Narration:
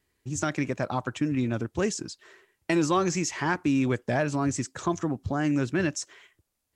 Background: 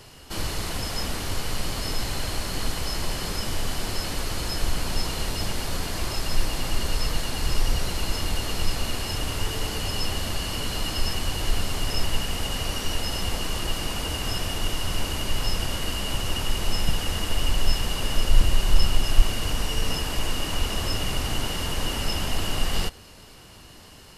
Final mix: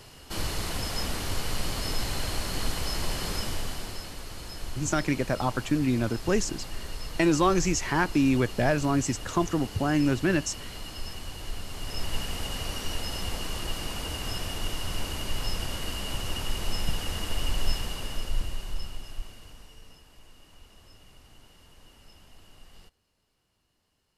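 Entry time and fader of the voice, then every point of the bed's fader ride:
4.50 s, +1.5 dB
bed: 0:03.38 −2 dB
0:04.16 −11.5 dB
0:11.64 −11.5 dB
0:12.19 −5 dB
0:17.71 −5 dB
0:20.04 −27.5 dB

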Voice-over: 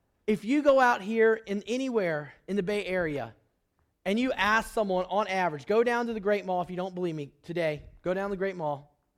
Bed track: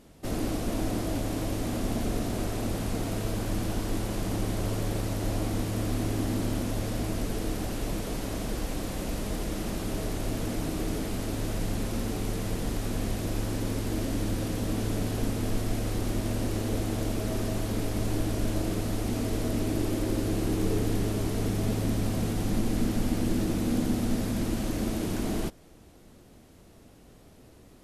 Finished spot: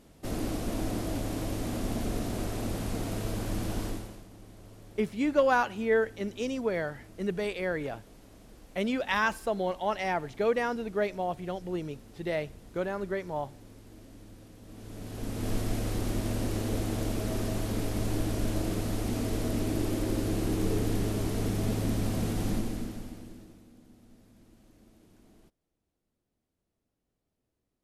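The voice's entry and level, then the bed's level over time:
4.70 s, −2.5 dB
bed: 0:03.86 −2.5 dB
0:04.28 −21 dB
0:14.61 −21 dB
0:15.51 −1.5 dB
0:22.50 −1.5 dB
0:23.73 −29.5 dB

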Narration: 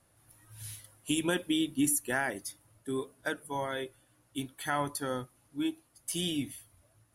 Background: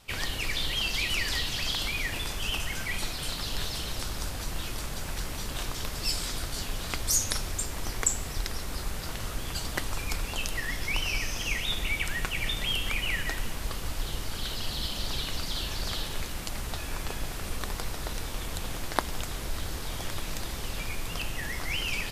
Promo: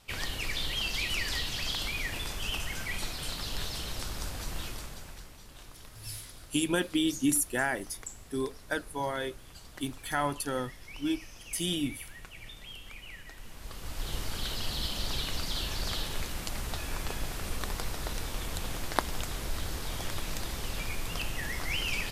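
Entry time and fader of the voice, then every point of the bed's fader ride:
5.45 s, +1.5 dB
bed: 0:04.64 −3 dB
0:05.38 −16.5 dB
0:13.32 −16.5 dB
0:14.15 −1 dB

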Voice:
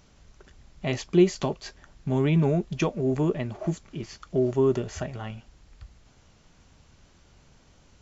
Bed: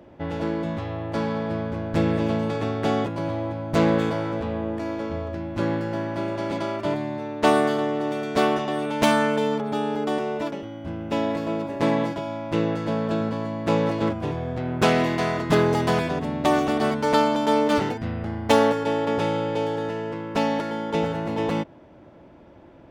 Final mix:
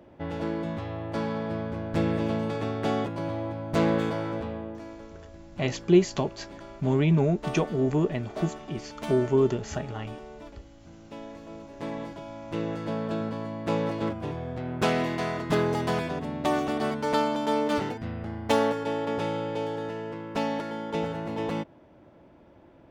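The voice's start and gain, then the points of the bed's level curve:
4.75 s, 0.0 dB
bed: 0:04.37 −4 dB
0:05.13 −17 dB
0:11.40 −17 dB
0:12.87 −5.5 dB

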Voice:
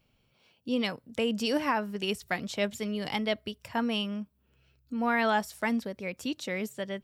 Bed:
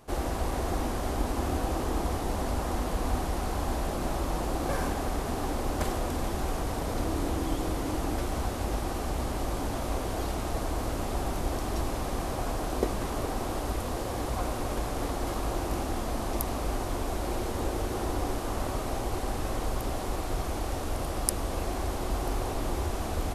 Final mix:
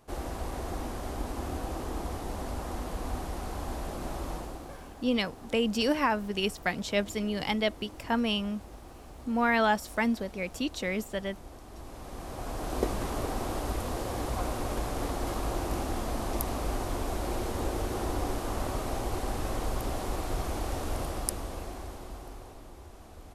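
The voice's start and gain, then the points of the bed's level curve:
4.35 s, +1.5 dB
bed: 0:04.32 −5.5 dB
0:04.80 −16.5 dB
0:11.67 −16.5 dB
0:12.80 −1 dB
0:20.99 −1 dB
0:22.71 −18 dB

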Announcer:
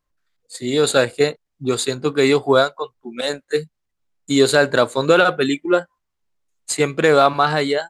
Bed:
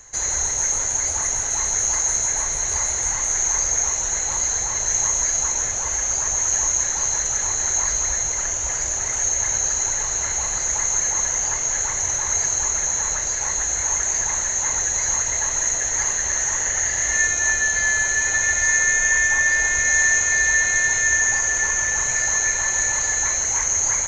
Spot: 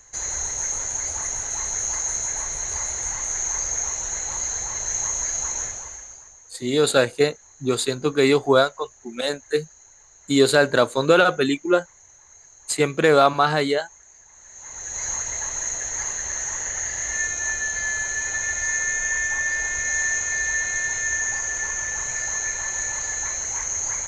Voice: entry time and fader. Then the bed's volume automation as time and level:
6.00 s, −2.0 dB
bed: 0:05.63 −5 dB
0:06.42 −28.5 dB
0:14.30 −28.5 dB
0:15.03 −6 dB

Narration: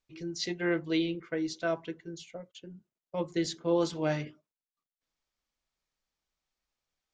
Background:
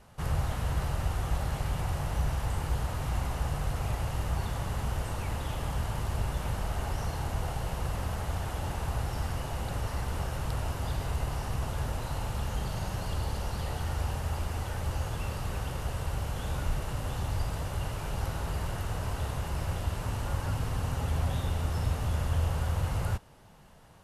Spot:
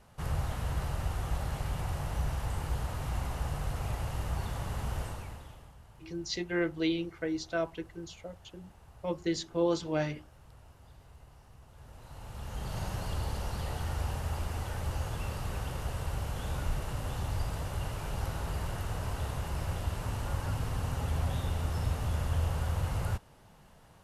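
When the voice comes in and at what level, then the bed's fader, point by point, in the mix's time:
5.90 s, −1.0 dB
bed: 0:05.03 −3 dB
0:05.77 −23 dB
0:11.67 −23 dB
0:12.78 −2 dB

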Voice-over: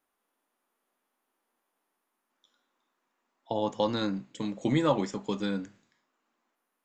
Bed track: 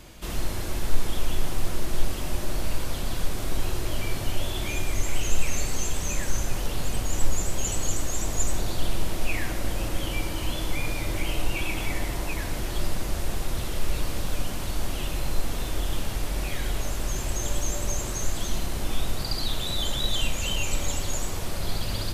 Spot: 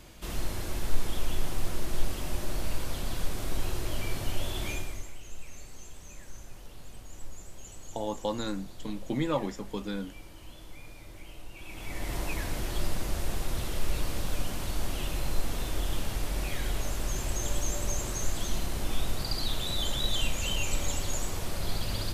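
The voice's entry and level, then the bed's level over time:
4.45 s, −4.0 dB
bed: 0:04.71 −4 dB
0:05.17 −19 dB
0:11.53 −19 dB
0:12.15 −3 dB

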